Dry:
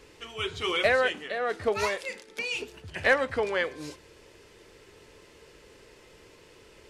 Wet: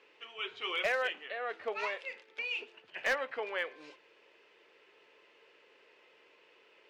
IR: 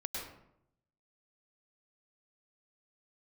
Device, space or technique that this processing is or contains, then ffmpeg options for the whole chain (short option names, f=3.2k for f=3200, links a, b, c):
megaphone: -filter_complex "[0:a]asettb=1/sr,asplit=3[a][b][c];[a]atrim=end=2.684[d];[b]atrim=start=2.68:end=3.36,asetpts=PTS-STARTPTS,afade=t=in:d=0.004:c=qsin,afade=t=out:st=0.676:d=0.004:c=qsin,highpass=f=120:w=0.5412,highpass=f=120:w=1.3066[e];[c]atrim=start=3.356[f];[d][e]acrossfade=d=0.004:c1=hsin:c2=qsin[g];[g][f]acrossfade=d=0.004:c1=qsin:c2=hsin,highpass=490,lowpass=3k,equalizer=f=2.7k:t=o:w=0.59:g=6,asoftclip=type=hard:threshold=-17.5dB,volume=-7dB"